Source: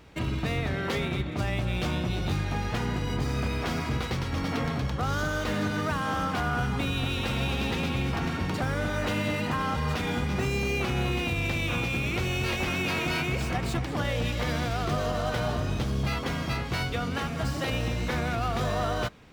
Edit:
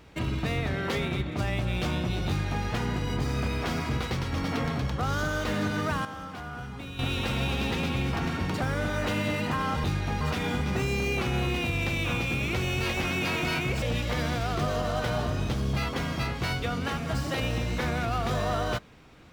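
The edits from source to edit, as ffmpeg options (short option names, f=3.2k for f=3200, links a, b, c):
-filter_complex "[0:a]asplit=6[a][b][c][d][e][f];[a]atrim=end=6.052[g];[b]atrim=start=6.048:end=6.992,asetpts=PTS-STARTPTS,volume=-10.5dB[h];[c]atrim=start=6.988:end=9.842[i];[d]atrim=start=2.278:end=2.652[j];[e]atrim=start=9.838:end=13.452[k];[f]atrim=start=14.118[l];[g][h]acrossfade=d=0.004:c1=hsin:c2=hsin[m];[m][i]acrossfade=d=0.004:c1=hsin:c2=hsin[n];[n][j]acrossfade=d=0.004:c1=hsin:c2=hsin[o];[o][k]acrossfade=d=0.004:c1=hsin:c2=hsin[p];[p][l]acrossfade=d=0.004:c1=hsin:c2=hsin"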